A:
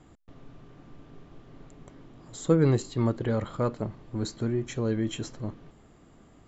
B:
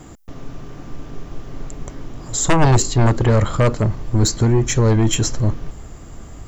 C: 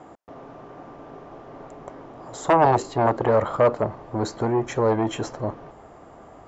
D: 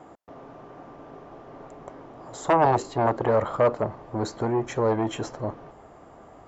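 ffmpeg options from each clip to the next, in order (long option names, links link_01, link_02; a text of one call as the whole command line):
ffmpeg -i in.wav -af "aeval=exprs='0.299*sin(PI/2*3.55*val(0)/0.299)':channel_layout=same,aexciter=amount=2.7:drive=3.8:freq=5200,asubboost=boost=4:cutoff=100" out.wav
ffmpeg -i in.wav -af "bandpass=frequency=740:width_type=q:width=1.4:csg=0,volume=4dB" out.wav
ffmpeg -i in.wav -af "volume=-2.5dB" -ar 48000 -c:a libopus -b:a 64k out.opus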